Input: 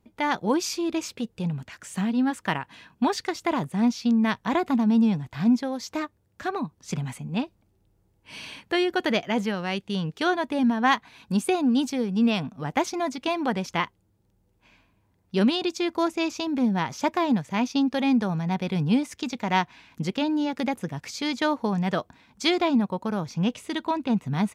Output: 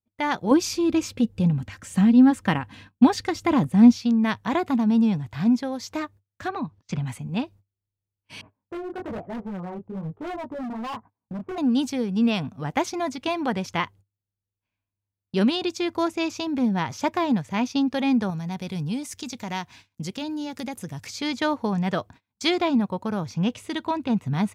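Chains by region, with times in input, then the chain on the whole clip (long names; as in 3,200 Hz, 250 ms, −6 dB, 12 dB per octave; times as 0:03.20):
0:00.51–0:03.98: low-shelf EQ 300 Hz +10.5 dB + comb filter 3.8 ms, depth 39%
0:06.48–0:07.07: low-pass filter 4,800 Hz + notch filter 410 Hz, Q 8.4
0:08.41–0:11.58: low-pass filter 1,100 Hz 24 dB per octave + chorus effect 1.1 Hz, delay 17 ms, depth 6.9 ms + hard clipping −30 dBFS
0:18.30–0:21.07: bass and treble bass +2 dB, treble +11 dB + downward compressor 1.5 to 1, threshold −40 dBFS
whole clip: noise gate −46 dBFS, range −29 dB; parametric band 99 Hz +12 dB 0.46 octaves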